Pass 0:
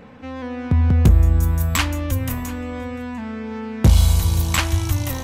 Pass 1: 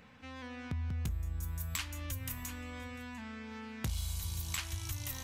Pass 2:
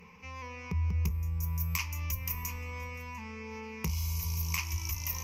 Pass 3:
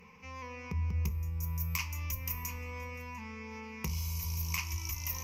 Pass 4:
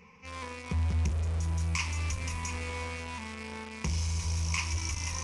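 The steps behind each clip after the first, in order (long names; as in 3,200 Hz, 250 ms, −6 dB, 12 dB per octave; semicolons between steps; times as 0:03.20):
guitar amp tone stack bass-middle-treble 5-5-5; downward compressor 3 to 1, threshold −38 dBFS, peak gain reduction 12 dB; level +1 dB
EQ curve with evenly spaced ripples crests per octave 0.8, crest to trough 18 dB
convolution reverb RT60 0.80 s, pre-delay 4 ms, DRR 11.5 dB; level −2 dB
in parallel at −10 dB: log-companded quantiser 2 bits; on the sum: downsampling to 22,050 Hz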